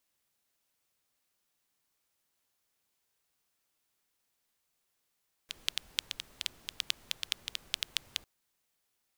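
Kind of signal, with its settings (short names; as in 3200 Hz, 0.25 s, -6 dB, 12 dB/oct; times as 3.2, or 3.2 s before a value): rain from filtered ticks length 2.75 s, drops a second 7.3, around 3300 Hz, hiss -19 dB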